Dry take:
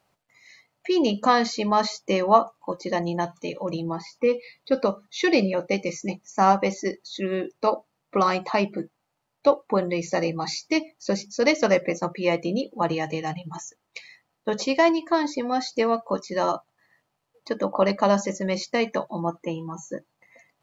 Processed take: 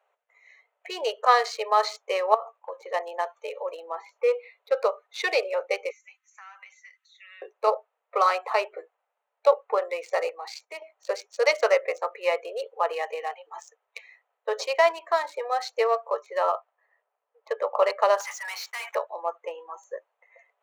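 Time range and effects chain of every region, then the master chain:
0:02.34–0:02.94: noise gate with hold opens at −45 dBFS, closes at −51 dBFS + downward compressor 4 to 1, threshold −28 dBFS
0:05.90–0:07.42: inverse Chebyshev high-pass filter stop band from 270 Hz, stop band 80 dB + comb filter 3.9 ms, depth 48% + downward compressor, threshold −41 dBFS
0:10.29–0:10.82: noise gate −47 dBFS, range −11 dB + downward compressor 2 to 1, threshold −34 dBFS
0:16.15–0:17.67: treble cut that deepens with the level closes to 2,800 Hz, closed at −19 dBFS + one half of a high-frequency compander decoder only
0:18.20–0:18.95: Butterworth high-pass 790 Hz 72 dB per octave + downward compressor 2.5 to 1, threshold −44 dBFS + leveller curve on the samples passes 5
whole clip: adaptive Wiener filter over 9 samples; Chebyshev high-pass filter 430 Hz, order 6; dynamic equaliser 1,300 Hz, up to +4 dB, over −42 dBFS, Q 3.7

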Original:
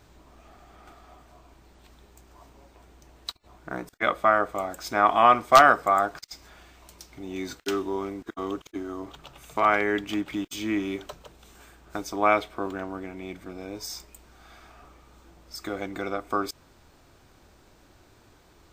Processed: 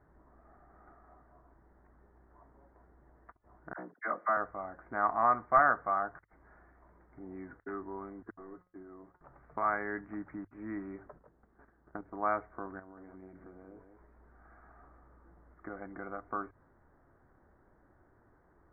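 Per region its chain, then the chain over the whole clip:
0:03.73–0:04.37: high-pass filter 190 Hz 24 dB per octave + all-pass dispersion lows, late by 51 ms, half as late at 1,000 Hz
0:08.31–0:09.21: linear delta modulator 32 kbit/s, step −47.5 dBFS + noise gate −47 dBFS, range −19 dB + tuned comb filter 180 Hz, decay 0.27 s, mix 70%
0:11.05–0:12.13: parametric band 250 Hz +4.5 dB 2.1 octaves + output level in coarse steps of 10 dB
0:12.79–0:15.57: downward compressor 4 to 1, threshold −41 dBFS + single-tap delay 183 ms −7 dB
whole clip: Butterworth low-pass 1,900 Hz 72 dB per octave; mains-hum notches 50/100 Hz; dynamic equaliser 400 Hz, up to −6 dB, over −37 dBFS, Q 0.97; level −8 dB

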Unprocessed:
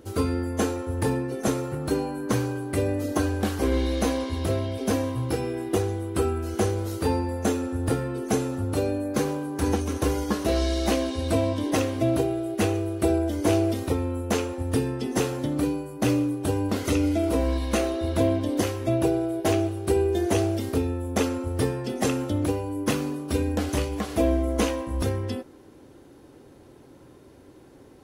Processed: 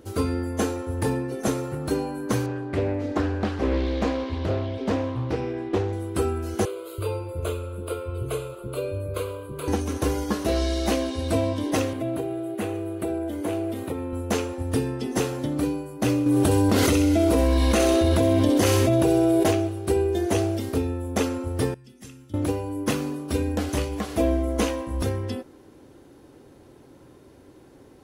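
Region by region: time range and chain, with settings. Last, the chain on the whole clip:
0:02.46–0:05.93: low-pass filter 3,800 Hz + highs frequency-modulated by the lows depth 0.31 ms
0:06.65–0:09.68: phaser with its sweep stopped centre 1,200 Hz, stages 8 + multiband delay without the direct sound highs, lows 330 ms, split 280 Hz
0:11.93–0:14.13: high-pass filter 110 Hz + parametric band 5,500 Hz −12 dB 0.76 octaves + downward compressor 2 to 1, threshold −27 dBFS
0:16.26–0:19.51: delay with a high-pass on its return 64 ms, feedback 47%, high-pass 2,900 Hz, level −4.5 dB + envelope flattener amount 100%
0:21.74–0:22.34: guitar amp tone stack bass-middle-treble 6-0-2 + notch filter 4,200 Hz, Q 15
whole clip: no processing

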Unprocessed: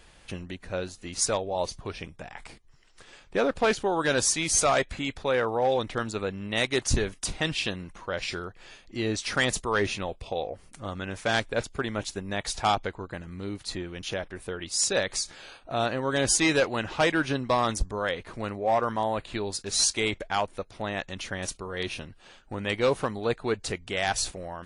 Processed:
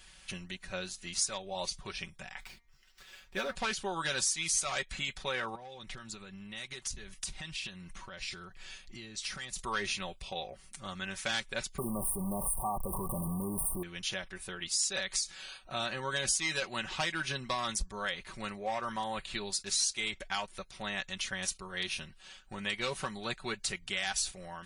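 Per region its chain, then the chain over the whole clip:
0:02.40–0:03.55: running median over 5 samples + notch comb filter 160 Hz + hum removal 234.3 Hz, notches 10
0:05.55–0:09.59: low-shelf EQ 180 Hz +6 dB + downward compressor 20 to 1, threshold −35 dBFS
0:11.78–0:13.83: converter with a step at zero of −32 dBFS + linear-phase brick-wall band-stop 1,200–8,500 Hz + envelope flattener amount 50%
whole clip: guitar amp tone stack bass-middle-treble 5-5-5; comb filter 5.3 ms, depth 62%; downward compressor 3 to 1, threshold −39 dBFS; level +8 dB

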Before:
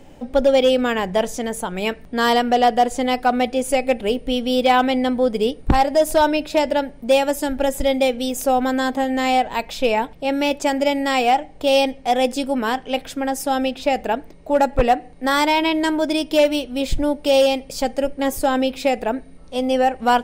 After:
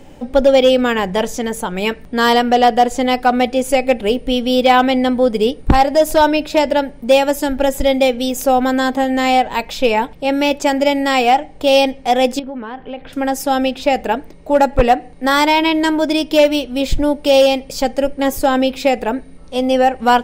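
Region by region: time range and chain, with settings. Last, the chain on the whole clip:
0:12.39–0:13.13: high-frequency loss of the air 390 metres + downward compressor, threshold −28 dBFS
whole clip: notch filter 670 Hz, Q 15; dynamic equaliser 9,200 Hz, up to −6 dB, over −51 dBFS, Q 3.8; level +4.5 dB

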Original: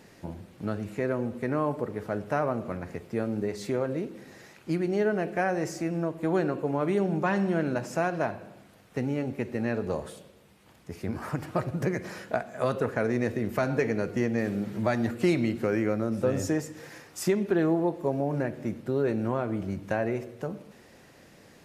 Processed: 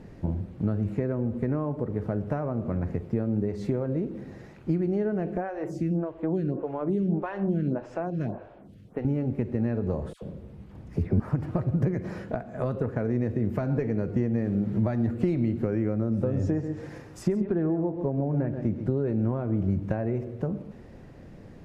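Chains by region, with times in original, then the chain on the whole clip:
0:05.37–0:09.05: parametric band 3,200 Hz +4.5 dB 0.44 octaves + phaser with staggered stages 1.7 Hz
0:10.13–0:11.20: low-shelf EQ 450 Hz +6 dB + all-pass dispersion lows, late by 92 ms, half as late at 1,100 Hz
0:16.33–0:18.97: treble cut that deepens with the level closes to 2,400 Hz, closed at −22 dBFS + high-shelf EQ 7,000 Hz +5.5 dB + single-tap delay 134 ms −12 dB
whole clip: downward compressor 3 to 1, threshold −32 dBFS; spectral tilt −4 dB per octave

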